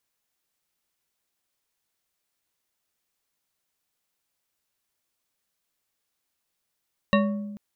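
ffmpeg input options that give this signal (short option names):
-f lavfi -i "aevalsrc='0.133*pow(10,-3*t/1.37)*sin(2*PI*206*t)+0.106*pow(10,-3*t/0.674)*sin(2*PI*567.9*t)+0.0841*pow(10,-3*t/0.421)*sin(2*PI*1113.2*t)+0.0668*pow(10,-3*t/0.296)*sin(2*PI*1840.2*t)+0.0531*pow(10,-3*t/0.223)*sin(2*PI*2748*t)+0.0422*pow(10,-3*t/0.177)*sin(2*PI*3839.8*t)':d=0.44:s=44100"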